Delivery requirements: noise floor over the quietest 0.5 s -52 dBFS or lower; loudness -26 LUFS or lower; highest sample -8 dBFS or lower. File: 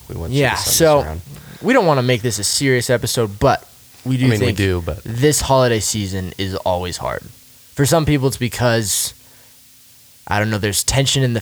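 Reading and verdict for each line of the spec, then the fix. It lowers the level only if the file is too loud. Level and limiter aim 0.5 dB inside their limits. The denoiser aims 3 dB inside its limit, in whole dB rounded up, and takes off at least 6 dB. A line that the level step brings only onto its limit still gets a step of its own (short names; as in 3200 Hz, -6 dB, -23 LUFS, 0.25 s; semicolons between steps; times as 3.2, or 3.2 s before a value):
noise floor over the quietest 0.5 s -47 dBFS: fail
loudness -17.0 LUFS: fail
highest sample -3.0 dBFS: fail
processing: gain -9.5 dB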